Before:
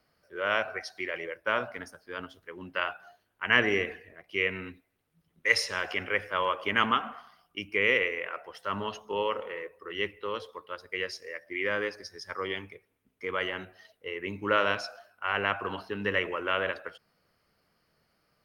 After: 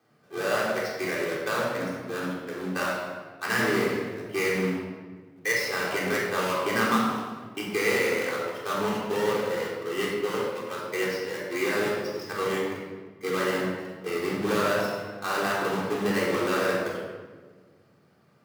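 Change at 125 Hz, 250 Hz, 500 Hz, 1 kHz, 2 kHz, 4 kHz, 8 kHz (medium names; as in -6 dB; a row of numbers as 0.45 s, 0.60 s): +8.0 dB, +9.5 dB, +6.0 dB, +2.5 dB, 0.0 dB, 0.0 dB, +10.0 dB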